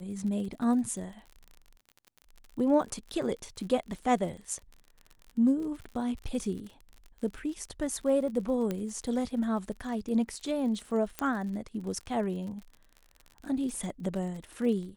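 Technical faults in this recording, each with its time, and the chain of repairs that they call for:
surface crackle 47 per second −39 dBFS
0:08.71: click −19 dBFS
0:11.19: click −16 dBFS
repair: click removal

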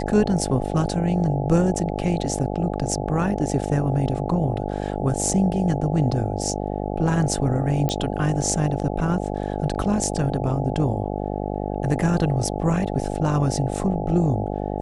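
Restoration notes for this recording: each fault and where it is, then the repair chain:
mains buzz 50 Hz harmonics 17 −27 dBFS
0:07.89: click −11 dBFS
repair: click removal
hum removal 50 Hz, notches 17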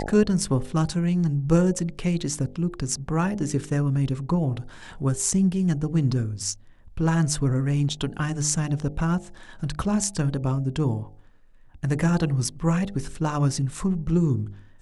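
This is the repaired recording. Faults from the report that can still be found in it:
none of them is left

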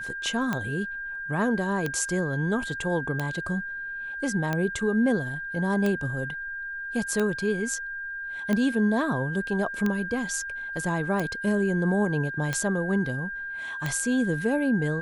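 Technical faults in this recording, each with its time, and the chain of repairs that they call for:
scratch tick 45 rpm −14 dBFS
whistle 1,600 Hz −32 dBFS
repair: click removal
notch filter 1,600 Hz, Q 30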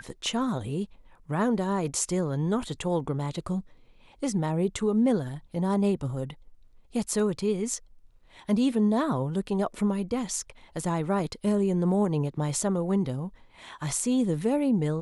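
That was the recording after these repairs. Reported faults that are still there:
none of them is left

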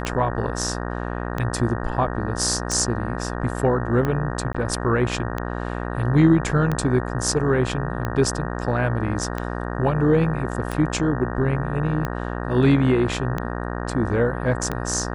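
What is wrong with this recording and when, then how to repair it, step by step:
mains buzz 60 Hz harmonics 31 −28 dBFS
scratch tick 45 rpm −13 dBFS
0:04.53–0:04.54: drop-out 15 ms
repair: click removal
hum removal 60 Hz, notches 31
repair the gap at 0:04.53, 15 ms

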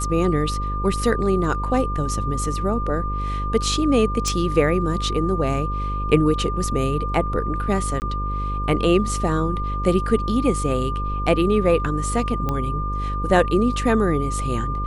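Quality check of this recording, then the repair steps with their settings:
mains buzz 50 Hz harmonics 11 −26 dBFS
whistle 1,200 Hz −27 dBFS
0:04.28: click
0:08.00–0:08.02: drop-out 19 ms
0:12.49: click −12 dBFS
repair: click removal
notch filter 1,200 Hz, Q 30
hum removal 50 Hz, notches 11
repair the gap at 0:08.00, 19 ms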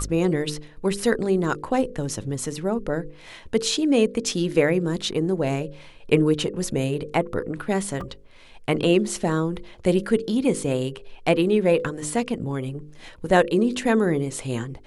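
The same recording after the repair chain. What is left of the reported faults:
0:04.28: click

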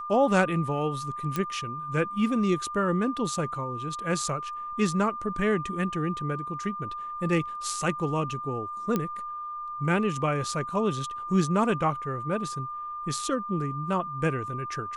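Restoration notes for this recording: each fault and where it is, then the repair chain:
whistle 1,200 Hz −33 dBFS
0:01.36: click −14 dBFS
0:08.96: click −13 dBFS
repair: click removal
notch filter 1,200 Hz, Q 30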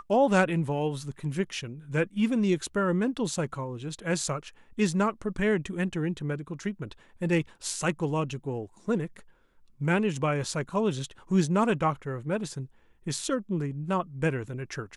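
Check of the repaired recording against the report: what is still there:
none of them is left

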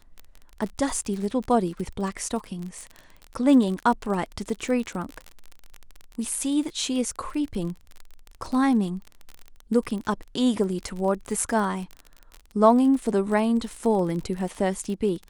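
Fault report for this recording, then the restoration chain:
surface crackle 37 per second −30 dBFS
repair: click removal

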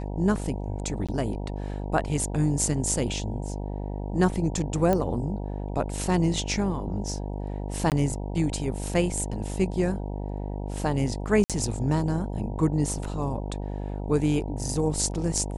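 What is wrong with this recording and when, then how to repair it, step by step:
mains buzz 50 Hz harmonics 19 −32 dBFS
0:01.07–0:01.09: drop-out 16 ms
0:04.93: click −12 dBFS
0:07.90–0:07.92: drop-out 18 ms
0:11.44–0:11.50: drop-out 57 ms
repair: click removal
hum removal 50 Hz, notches 19
repair the gap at 0:01.07, 16 ms
repair the gap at 0:07.90, 18 ms
repair the gap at 0:11.44, 57 ms

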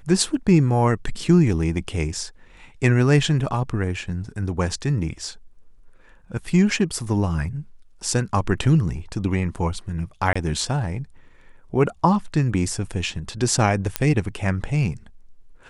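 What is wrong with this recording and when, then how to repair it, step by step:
0:10.33–0:10.36: drop-out 25 ms
0:13.96: click −3 dBFS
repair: click removal
repair the gap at 0:10.33, 25 ms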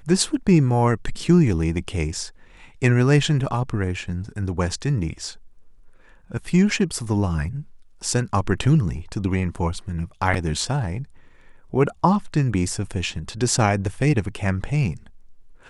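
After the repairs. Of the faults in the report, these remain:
none of them is left

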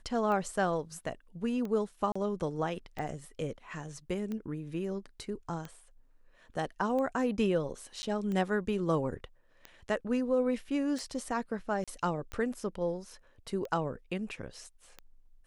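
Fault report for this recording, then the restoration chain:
scratch tick 45 rpm −26 dBFS
0:02.12–0:02.15: drop-out 35 ms
0:08.02–0:08.03: drop-out 10 ms
0:11.84–0:11.88: drop-out 36 ms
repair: click removal
repair the gap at 0:02.12, 35 ms
repair the gap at 0:08.02, 10 ms
repair the gap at 0:11.84, 36 ms

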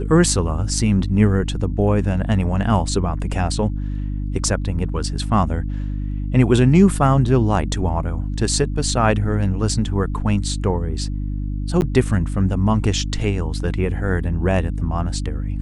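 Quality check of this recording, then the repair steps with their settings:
mains hum 50 Hz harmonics 6 −24 dBFS
0:11.81–0:11.82: drop-out 9.8 ms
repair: hum removal 50 Hz, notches 6
repair the gap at 0:11.81, 9.8 ms

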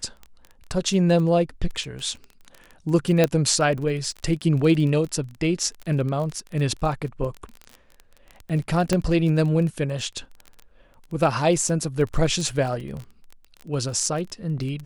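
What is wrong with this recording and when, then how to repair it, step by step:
surface crackle 20 per second −29 dBFS
0:03.24: click −5 dBFS
0:08.93: click −9 dBFS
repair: click removal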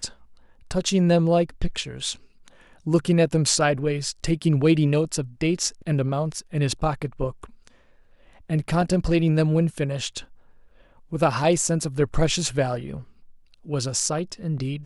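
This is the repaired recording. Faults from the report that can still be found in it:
none of them is left

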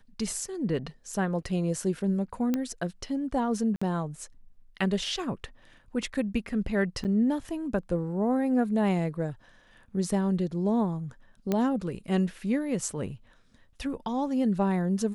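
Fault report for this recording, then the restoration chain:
0:02.54: click −15 dBFS
0:03.76–0:03.81: drop-out 55 ms
0:07.04–0:07.05: drop-out 8.6 ms
0:11.52: click −14 dBFS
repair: click removal
repair the gap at 0:03.76, 55 ms
repair the gap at 0:07.04, 8.6 ms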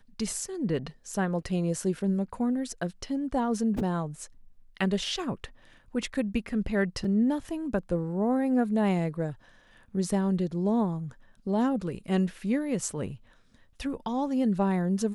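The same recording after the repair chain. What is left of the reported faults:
none of them is left

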